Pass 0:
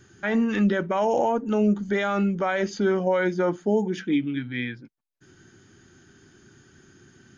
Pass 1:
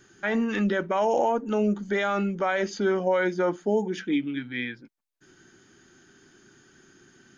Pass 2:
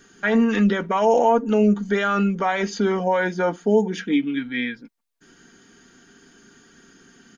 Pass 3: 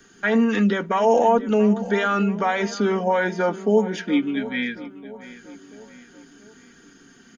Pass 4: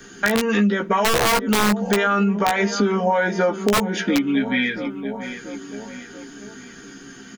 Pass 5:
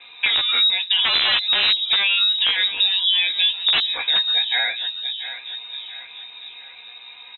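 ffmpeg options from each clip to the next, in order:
-af "equalizer=f=83:t=o:w=1.9:g=-12"
-af "aecho=1:1:4.3:0.56,volume=1.58"
-filter_complex "[0:a]acrossover=split=130|480|3500[s0][s1][s2][s3];[s0]acompressor=threshold=0.00355:ratio=6[s4];[s4][s1][s2][s3]amix=inputs=4:normalize=0,asplit=2[s5][s6];[s6]adelay=682,lowpass=f=3700:p=1,volume=0.158,asplit=2[s7][s8];[s8]adelay=682,lowpass=f=3700:p=1,volume=0.5,asplit=2[s9][s10];[s10]adelay=682,lowpass=f=3700:p=1,volume=0.5,asplit=2[s11][s12];[s12]adelay=682,lowpass=f=3700:p=1,volume=0.5[s13];[s5][s7][s9][s11][s13]amix=inputs=5:normalize=0"
-filter_complex "[0:a]aeval=exprs='(mod(3.55*val(0)+1,2)-1)/3.55':c=same,asplit=2[s0][s1];[s1]adelay=15,volume=0.631[s2];[s0][s2]amix=inputs=2:normalize=0,acompressor=threshold=0.0501:ratio=4,volume=2.66"
-af "lowpass=f=3400:t=q:w=0.5098,lowpass=f=3400:t=q:w=0.6013,lowpass=f=3400:t=q:w=0.9,lowpass=f=3400:t=q:w=2.563,afreqshift=-4000"

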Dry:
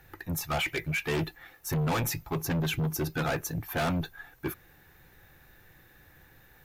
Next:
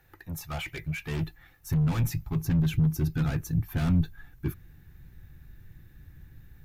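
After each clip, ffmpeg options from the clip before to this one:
-af "asubboost=boost=10.5:cutoff=190,volume=0.473"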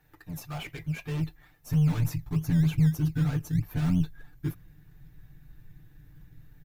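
-filter_complex "[0:a]aecho=1:1:6.7:0.96,asplit=2[s0][s1];[s1]acrusher=samples=20:mix=1:aa=0.000001:lfo=1:lforange=12:lforate=3.2,volume=0.355[s2];[s0][s2]amix=inputs=2:normalize=0,volume=0.473"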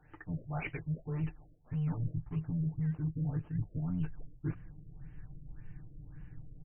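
-af "areverse,acompressor=threshold=0.0178:ratio=6,areverse,afftfilt=real='re*lt(b*sr/1024,630*pow(3200/630,0.5+0.5*sin(2*PI*1.8*pts/sr)))':imag='im*lt(b*sr/1024,630*pow(3200/630,0.5+0.5*sin(2*PI*1.8*pts/sr)))':win_size=1024:overlap=0.75,volume=1.41"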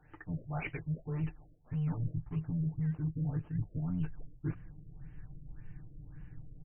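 -af anull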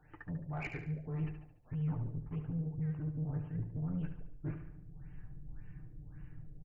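-filter_complex "[0:a]asoftclip=type=tanh:threshold=0.0299,asplit=2[s0][s1];[s1]aecho=0:1:72|144|216|288|360:0.376|0.169|0.0761|0.0342|0.0154[s2];[s0][s2]amix=inputs=2:normalize=0,volume=0.891"

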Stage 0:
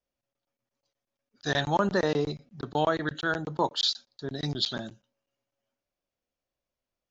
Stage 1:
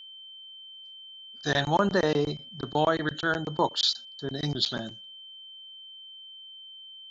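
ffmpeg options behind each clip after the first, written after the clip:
-af "aeval=exprs='val(0)+0.00562*sin(2*PI*3100*n/s)':c=same,volume=1.19"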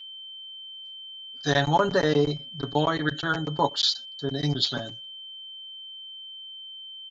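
-af "aecho=1:1:7.1:0.74"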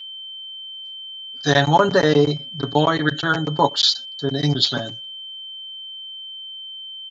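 -af "highpass=55,volume=2.11"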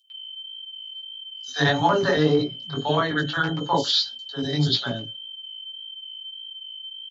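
-filter_complex "[0:a]flanger=delay=16.5:depth=3.5:speed=1.7,acrossover=split=610|6000[s0][s1][s2];[s1]adelay=100[s3];[s0]adelay=140[s4];[s4][s3][s2]amix=inputs=3:normalize=0"

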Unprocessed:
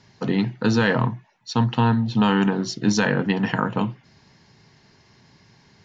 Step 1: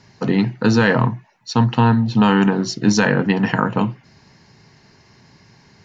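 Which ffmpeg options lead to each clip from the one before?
-af "equalizer=f=3400:t=o:w=0.27:g=-6,volume=1.68"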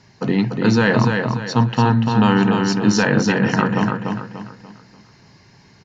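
-af "aecho=1:1:292|584|876|1168|1460:0.596|0.22|0.0815|0.0302|0.0112,volume=0.891"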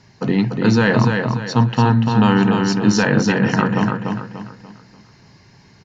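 -af "lowshelf=f=140:g=3"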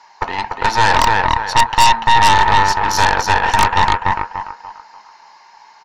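-af "highpass=f=900:t=q:w=6.9,aeval=exprs='1.19*(cos(1*acos(clip(val(0)/1.19,-1,1)))-cos(1*PI/2))+0.422*(cos(5*acos(clip(val(0)/1.19,-1,1)))-cos(5*PI/2))+0.376*(cos(8*acos(clip(val(0)/1.19,-1,1)))-cos(8*PI/2))':c=same,volume=0.473"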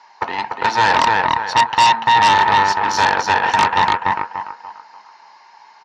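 -af "highpass=150,lowpass=5600,volume=0.891"

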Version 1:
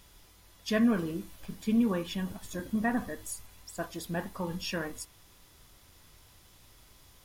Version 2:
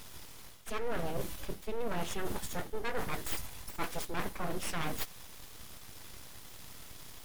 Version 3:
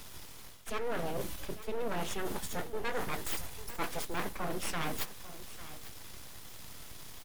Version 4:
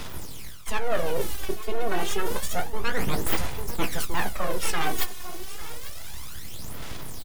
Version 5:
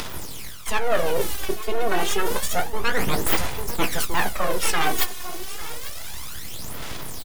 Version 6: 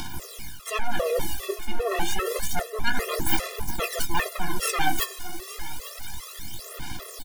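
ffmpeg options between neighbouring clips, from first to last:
-af "areverse,acompressor=threshold=0.0112:ratio=10,areverse,aeval=exprs='abs(val(0))':c=same,volume=3.16"
-filter_complex "[0:a]acrossover=split=170|2000[s0][s1][s2];[s0]alimiter=level_in=3.35:limit=0.0631:level=0:latency=1,volume=0.299[s3];[s3][s1][s2]amix=inputs=3:normalize=0,aecho=1:1:848:0.168,volume=1.12"
-filter_complex "[0:a]aphaser=in_gain=1:out_gain=1:delay=2.8:decay=0.62:speed=0.29:type=sinusoidal,asplit=2[s0][s1];[s1]adelay=15,volume=0.211[s2];[s0][s2]amix=inputs=2:normalize=0,volume=2.11"
-af "lowshelf=f=260:g=-5,acompressor=mode=upward:threshold=0.0178:ratio=2.5,volume=1.88"
-af "afftfilt=real='re*gt(sin(2*PI*2.5*pts/sr)*(1-2*mod(floor(b*sr/1024/350),2)),0)':imag='im*gt(sin(2*PI*2.5*pts/sr)*(1-2*mod(floor(b*sr/1024/350),2)),0)':win_size=1024:overlap=0.75"

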